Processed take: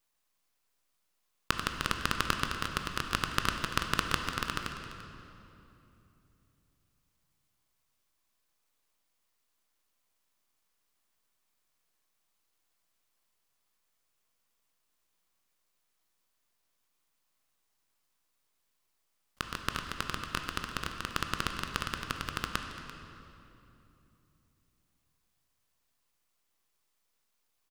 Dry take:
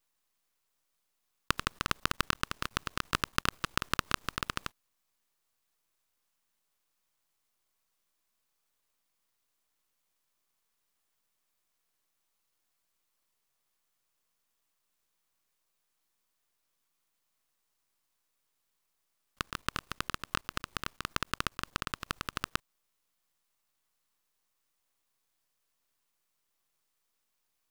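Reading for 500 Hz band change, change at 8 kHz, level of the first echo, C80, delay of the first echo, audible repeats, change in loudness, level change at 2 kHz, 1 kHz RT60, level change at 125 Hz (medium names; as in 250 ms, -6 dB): +1.5 dB, +0.5 dB, -15.5 dB, 6.0 dB, 341 ms, 1, +1.0 dB, +1.5 dB, 2.7 s, +2.0 dB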